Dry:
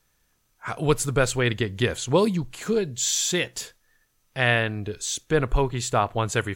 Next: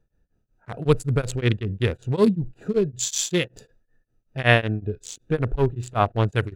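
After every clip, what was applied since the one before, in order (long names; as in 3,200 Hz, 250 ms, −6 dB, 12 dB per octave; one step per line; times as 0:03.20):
adaptive Wiener filter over 41 samples
harmonic and percussive parts rebalanced percussive −7 dB
tremolo along a rectified sine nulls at 5.3 Hz
level +8 dB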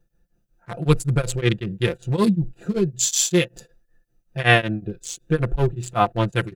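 high-shelf EQ 6,100 Hz +6.5 dB
comb filter 5.8 ms, depth 76%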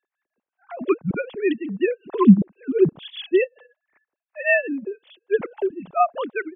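three sine waves on the formant tracks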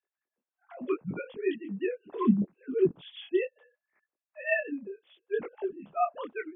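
micro pitch shift up and down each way 25 cents
level −6 dB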